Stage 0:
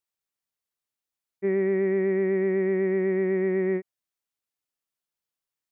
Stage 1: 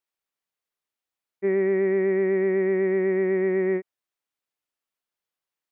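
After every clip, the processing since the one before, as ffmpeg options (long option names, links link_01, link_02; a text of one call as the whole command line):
ffmpeg -i in.wav -af "bass=frequency=250:gain=-6,treble=frequency=4000:gain=-6,volume=3dB" out.wav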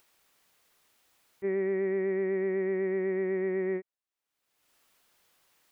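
ffmpeg -i in.wav -af "acompressor=mode=upward:threshold=-39dB:ratio=2.5,volume=-7dB" out.wav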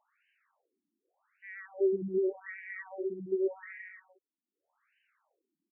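ffmpeg -i in.wav -af "aecho=1:1:120|210|277.5|328.1|366.1:0.631|0.398|0.251|0.158|0.1,afftfilt=real='re*between(b*sr/1024,240*pow(2200/240,0.5+0.5*sin(2*PI*0.85*pts/sr))/1.41,240*pow(2200/240,0.5+0.5*sin(2*PI*0.85*pts/sr))*1.41)':imag='im*between(b*sr/1024,240*pow(2200/240,0.5+0.5*sin(2*PI*0.85*pts/sr))/1.41,240*pow(2200/240,0.5+0.5*sin(2*PI*0.85*pts/sr))*1.41)':win_size=1024:overlap=0.75" out.wav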